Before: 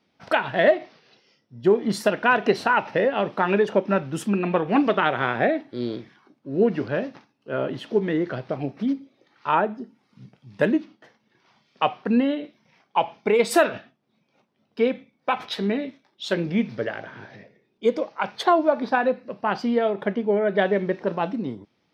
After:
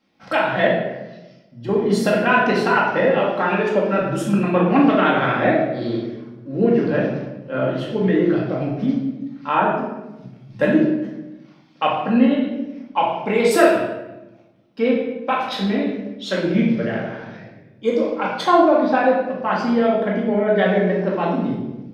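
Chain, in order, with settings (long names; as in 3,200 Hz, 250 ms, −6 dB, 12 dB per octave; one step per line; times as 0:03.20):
0:00.67–0:01.69: downward compressor 3 to 1, threshold −36 dBFS, peak gain reduction 17 dB
0:03.15–0:03.98: high-pass filter 300 Hz 6 dB per octave
rectangular room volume 460 cubic metres, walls mixed, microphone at 2.2 metres
level −1.5 dB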